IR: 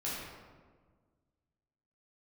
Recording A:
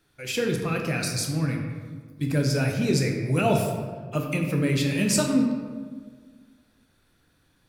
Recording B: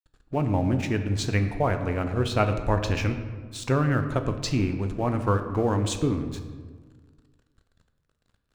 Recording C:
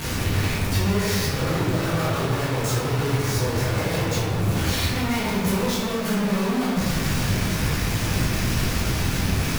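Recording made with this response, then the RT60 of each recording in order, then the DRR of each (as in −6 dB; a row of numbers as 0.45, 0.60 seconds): C; 1.6, 1.6, 1.6 seconds; 1.5, 7.0, −8.0 decibels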